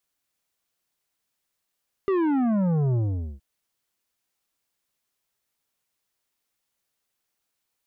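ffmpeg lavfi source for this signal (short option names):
-f lavfi -i "aevalsrc='0.0891*clip((1.32-t)/0.45,0,1)*tanh(3.16*sin(2*PI*400*1.32/log(65/400)*(exp(log(65/400)*t/1.32)-1)))/tanh(3.16)':d=1.32:s=44100"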